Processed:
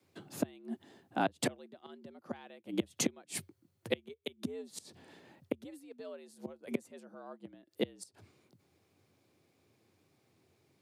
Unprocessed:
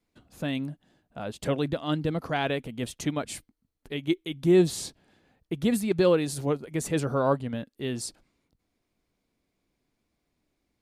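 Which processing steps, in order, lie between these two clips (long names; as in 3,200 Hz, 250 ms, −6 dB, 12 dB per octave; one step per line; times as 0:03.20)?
gate with flip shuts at −24 dBFS, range −31 dB
frequency shifter +79 Hz
level +6 dB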